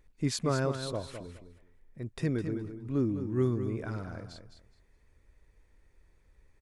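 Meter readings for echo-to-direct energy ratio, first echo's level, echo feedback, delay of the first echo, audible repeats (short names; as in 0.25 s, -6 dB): -9.0 dB, -9.0 dB, 20%, 0.209 s, 2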